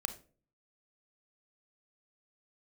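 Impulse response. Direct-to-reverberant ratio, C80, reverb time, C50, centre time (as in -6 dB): 8.5 dB, 18.0 dB, 0.40 s, 13.0 dB, 7 ms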